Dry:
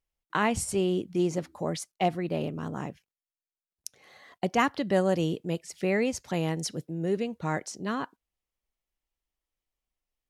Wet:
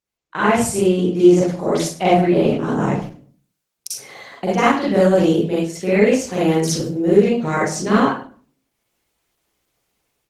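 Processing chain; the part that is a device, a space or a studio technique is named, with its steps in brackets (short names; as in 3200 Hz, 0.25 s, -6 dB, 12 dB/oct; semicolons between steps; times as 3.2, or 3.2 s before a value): far-field microphone of a smart speaker (reverb RT60 0.45 s, pre-delay 38 ms, DRR -8 dB; HPF 97 Hz 12 dB/oct; AGC gain up to 15.5 dB; gain -1 dB; Opus 16 kbps 48000 Hz)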